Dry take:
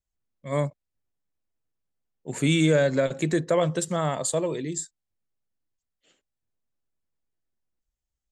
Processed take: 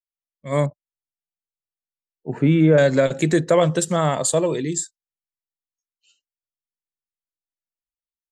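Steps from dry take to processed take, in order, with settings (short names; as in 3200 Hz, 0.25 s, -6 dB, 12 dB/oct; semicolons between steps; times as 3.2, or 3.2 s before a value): 0.66–2.78 LPF 1400 Hz 12 dB/oct; spectral noise reduction 27 dB; AGC gain up to 6.5 dB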